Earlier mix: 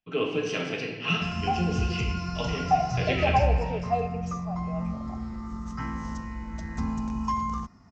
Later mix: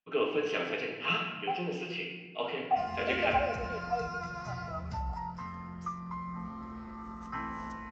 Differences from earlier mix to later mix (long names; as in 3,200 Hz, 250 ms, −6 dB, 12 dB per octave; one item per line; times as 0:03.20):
second voice −6.0 dB
background: entry +1.55 s
master: add bass and treble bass −14 dB, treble −14 dB